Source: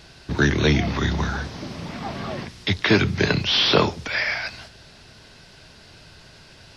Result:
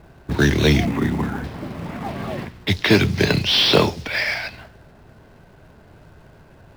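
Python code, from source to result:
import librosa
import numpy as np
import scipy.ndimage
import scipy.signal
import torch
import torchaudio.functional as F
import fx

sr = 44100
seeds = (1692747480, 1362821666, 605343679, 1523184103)

p1 = fx.cabinet(x, sr, low_hz=110.0, low_slope=12, high_hz=2400.0, hz=(260.0, 600.0, 1600.0), db=(8, -5, -5), at=(0.85, 1.44))
p2 = fx.env_lowpass(p1, sr, base_hz=970.0, full_db=-18.0)
p3 = fx.dynamic_eq(p2, sr, hz=1300.0, q=1.8, threshold_db=-40.0, ratio=4.0, max_db=-5)
p4 = fx.quant_companded(p3, sr, bits=4)
y = p3 + F.gain(torch.from_numpy(p4), -8.0).numpy()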